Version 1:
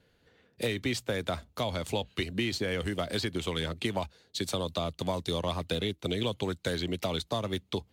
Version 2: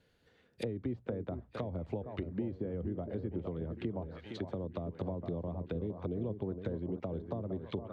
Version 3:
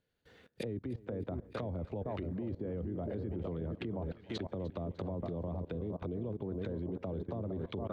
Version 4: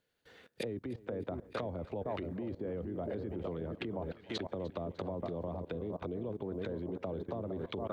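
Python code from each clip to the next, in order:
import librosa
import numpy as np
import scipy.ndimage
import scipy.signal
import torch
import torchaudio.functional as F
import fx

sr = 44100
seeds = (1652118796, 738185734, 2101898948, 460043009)

y1 = fx.echo_alternate(x, sr, ms=462, hz=1600.0, feedback_pct=66, wet_db=-9.0)
y1 = fx.env_lowpass_down(y1, sr, base_hz=470.0, full_db=-28.0)
y1 = F.gain(torch.from_numpy(y1), -4.0).numpy()
y2 = fx.level_steps(y1, sr, step_db=23)
y2 = fx.echo_feedback(y2, sr, ms=301, feedback_pct=39, wet_db=-19.5)
y2 = F.gain(torch.from_numpy(y2), 8.5).numpy()
y3 = fx.low_shelf(y2, sr, hz=250.0, db=-10.0)
y3 = F.gain(torch.from_numpy(y3), 4.0).numpy()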